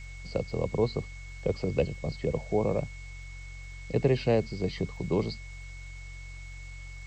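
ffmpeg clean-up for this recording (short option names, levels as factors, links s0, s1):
-af "adeclick=t=4,bandreject=f=45.4:t=h:w=4,bandreject=f=90.8:t=h:w=4,bandreject=f=136.2:t=h:w=4,bandreject=f=2200:w=30,afwtdn=0.002"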